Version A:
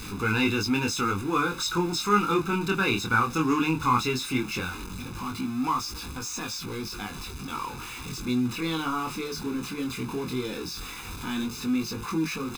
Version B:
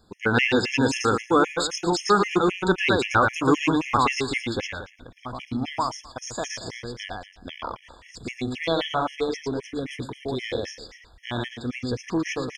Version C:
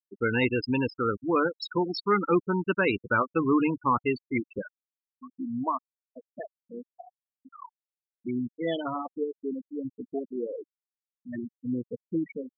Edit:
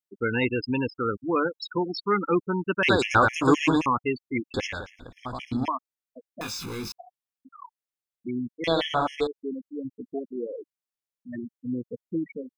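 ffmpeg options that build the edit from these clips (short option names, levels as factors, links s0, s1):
-filter_complex "[1:a]asplit=3[s0][s1][s2];[2:a]asplit=5[s3][s4][s5][s6][s7];[s3]atrim=end=2.832[s8];[s0]atrim=start=2.828:end=3.862[s9];[s4]atrim=start=3.858:end=4.542[s10];[s1]atrim=start=4.538:end=5.682[s11];[s5]atrim=start=5.678:end=6.412[s12];[0:a]atrim=start=6.408:end=6.922[s13];[s6]atrim=start=6.918:end=8.642[s14];[s2]atrim=start=8.638:end=9.272[s15];[s7]atrim=start=9.268[s16];[s8][s9]acrossfade=d=0.004:c1=hsin:c2=hsin[s17];[s17][s10]acrossfade=d=0.004:c1=hsin:c2=hsin[s18];[s18][s11]acrossfade=d=0.004:c1=hsin:c2=hsin[s19];[s19][s12]acrossfade=d=0.004:c1=hsin:c2=hsin[s20];[s20][s13]acrossfade=d=0.004:c1=hsin:c2=hsin[s21];[s21][s14]acrossfade=d=0.004:c1=hsin:c2=hsin[s22];[s22][s15]acrossfade=d=0.004:c1=hsin:c2=hsin[s23];[s23][s16]acrossfade=d=0.004:c1=hsin:c2=hsin"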